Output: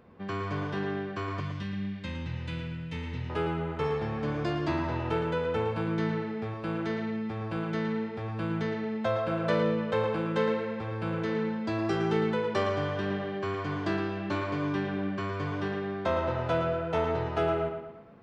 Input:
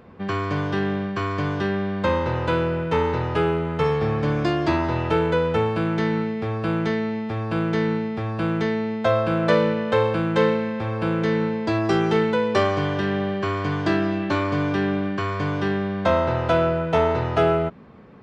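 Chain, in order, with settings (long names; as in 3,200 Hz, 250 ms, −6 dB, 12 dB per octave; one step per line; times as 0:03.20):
0:01.40–0:03.30: flat-topped bell 710 Hz −16 dB 2.4 octaves
tape delay 112 ms, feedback 49%, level −6 dB, low-pass 4,200 Hz
level −9 dB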